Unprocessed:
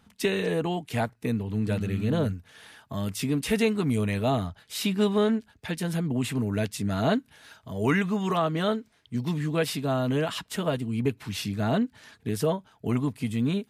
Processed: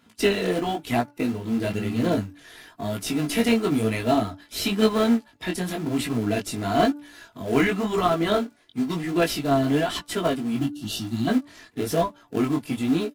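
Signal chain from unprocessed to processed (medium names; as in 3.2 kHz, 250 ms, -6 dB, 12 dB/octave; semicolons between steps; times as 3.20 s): coarse spectral quantiser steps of 15 dB; high-pass 150 Hz 12 dB/octave; spectral selection erased 11.05–11.74 s, 350–2600 Hz; in parallel at -12 dB: sample-rate reducer 1 kHz, jitter 20%; on the sum: comb 3.1 ms, depth 40%; de-hum 279.6 Hz, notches 5; chorus 0.95 Hz, delay 17.5 ms, depth 5.5 ms; speed mistake 24 fps film run at 25 fps; trim +6.5 dB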